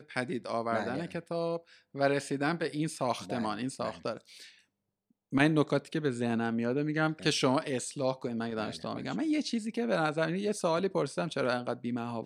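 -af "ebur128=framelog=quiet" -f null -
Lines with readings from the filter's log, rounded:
Integrated loudness:
  I:         -31.8 LUFS
  Threshold: -42.0 LUFS
Loudness range:
  LRA:         3.8 LU
  Threshold: -52.0 LUFS
  LRA low:   -33.8 LUFS
  LRA high:  -30.1 LUFS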